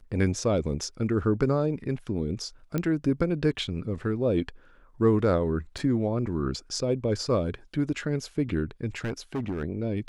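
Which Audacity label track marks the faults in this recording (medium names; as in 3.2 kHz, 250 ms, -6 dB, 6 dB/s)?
2.780000	2.780000	pop -15 dBFS
5.780000	5.780000	dropout 4.5 ms
8.970000	9.640000	clipped -26 dBFS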